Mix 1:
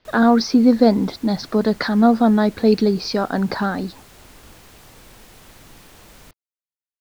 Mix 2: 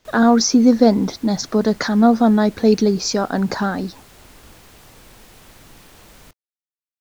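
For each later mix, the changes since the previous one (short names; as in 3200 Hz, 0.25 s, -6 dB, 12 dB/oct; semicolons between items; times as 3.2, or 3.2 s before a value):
speech: remove Chebyshev low-pass 4700 Hz, order 4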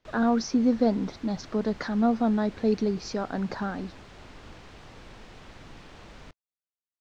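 speech -10.0 dB; master: add air absorption 140 m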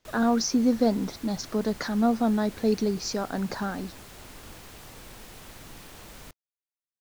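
master: remove air absorption 140 m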